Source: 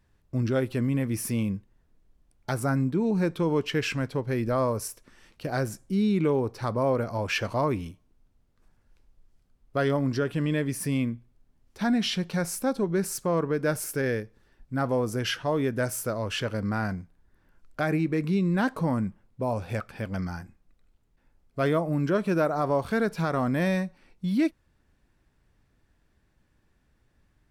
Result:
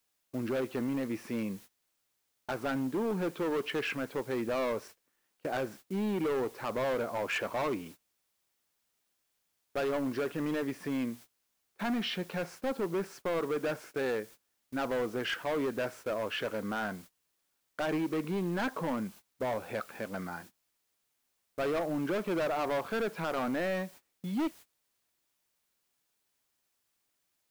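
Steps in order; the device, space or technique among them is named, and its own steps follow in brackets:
aircraft radio (band-pass filter 300–2,500 Hz; hard clipping −28 dBFS, distortion −8 dB; white noise bed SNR 22 dB; noise gate −49 dBFS, range −22 dB)

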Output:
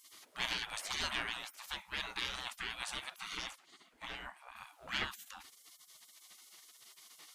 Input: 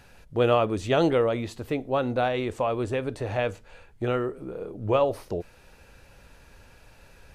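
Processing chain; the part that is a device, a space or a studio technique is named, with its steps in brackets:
saturation between pre-emphasis and de-emphasis (high-shelf EQ 2,900 Hz +11 dB; soft clipping −17 dBFS, distortion −15 dB; high-shelf EQ 2,900 Hz −11 dB)
gate on every frequency bin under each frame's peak −30 dB weak
0:03.51–0:04.56: high-shelf EQ 3,800 Hz −9 dB
level +8.5 dB

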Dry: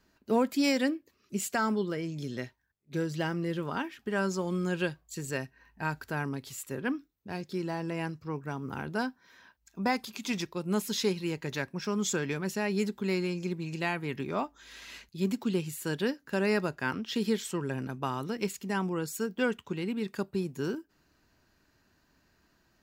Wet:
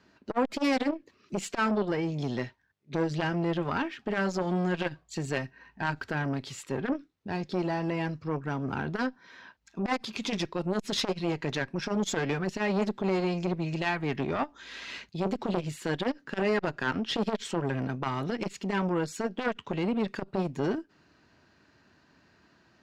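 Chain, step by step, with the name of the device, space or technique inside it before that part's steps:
valve radio (band-pass filter 93–4,600 Hz; tube saturation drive 25 dB, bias 0.4; saturating transformer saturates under 570 Hz)
level +8.5 dB

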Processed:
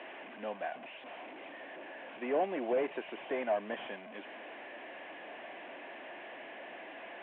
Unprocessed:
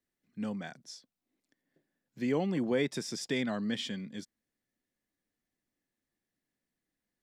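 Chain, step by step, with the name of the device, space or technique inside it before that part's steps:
digital answering machine (band-pass filter 400–3,400 Hz; linear delta modulator 16 kbit/s, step −45 dBFS; loudspeaker in its box 370–3,100 Hz, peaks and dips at 460 Hz −4 dB, 650 Hz +7 dB, 1,300 Hz −10 dB, 2,000 Hz −4 dB)
level +6.5 dB

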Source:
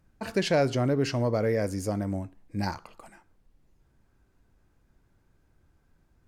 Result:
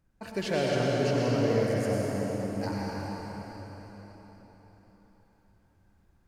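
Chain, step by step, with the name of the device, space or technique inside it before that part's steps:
cathedral (convolution reverb RT60 4.5 s, pre-delay 90 ms, DRR −5 dB)
level −6.5 dB

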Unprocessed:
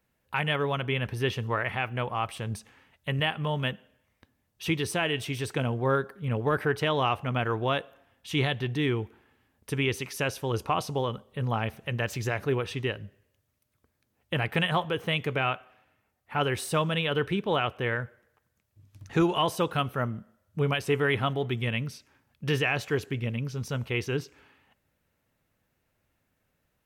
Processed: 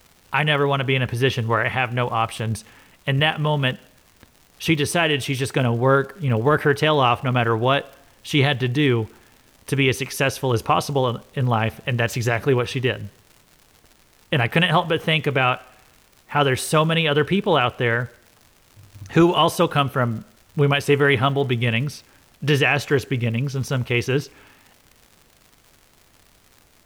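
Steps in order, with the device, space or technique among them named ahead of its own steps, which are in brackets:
vinyl LP (surface crackle 130 per second −45 dBFS; pink noise bed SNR 36 dB)
level +8.5 dB

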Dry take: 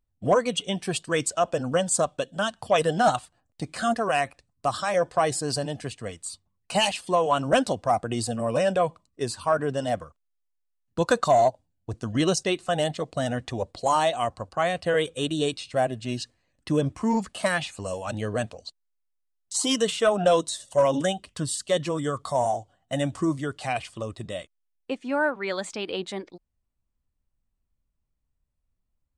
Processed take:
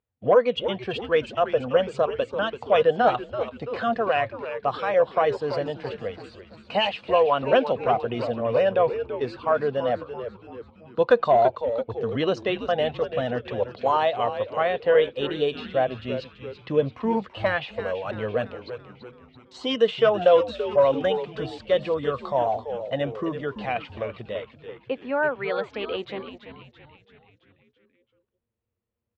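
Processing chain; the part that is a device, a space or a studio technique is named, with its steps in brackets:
frequency-shifting delay pedal into a guitar cabinet (echo with shifted repeats 334 ms, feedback 55%, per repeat −120 Hz, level −10.5 dB; loudspeaker in its box 110–3,400 Hz, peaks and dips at 170 Hz −8 dB, 310 Hz −6 dB, 480 Hz +7 dB)

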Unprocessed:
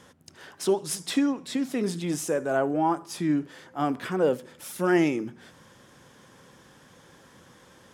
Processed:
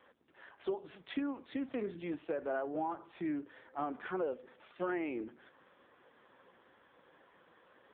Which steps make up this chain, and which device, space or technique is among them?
voicemail (band-pass filter 330–2,900 Hz; downward compressor 8 to 1, threshold −27 dBFS, peak gain reduction 8.5 dB; level −4 dB; AMR narrowband 5.9 kbit/s 8,000 Hz)

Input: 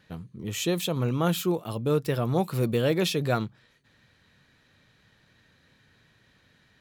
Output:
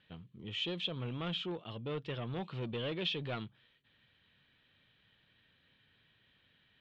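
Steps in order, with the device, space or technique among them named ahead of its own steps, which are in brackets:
overdriven synthesiser ladder filter (soft clipping −22 dBFS, distortion −14 dB; transistor ladder low-pass 3,500 Hz, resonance 65%)

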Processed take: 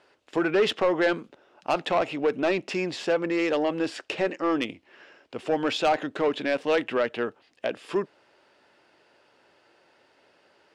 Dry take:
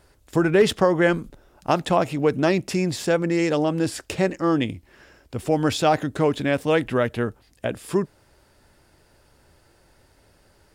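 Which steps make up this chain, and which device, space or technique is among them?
intercom (band-pass filter 340–4,100 Hz; parametric band 2,800 Hz +5 dB 0.39 octaves; soft clipping −15.5 dBFS, distortion −13 dB)

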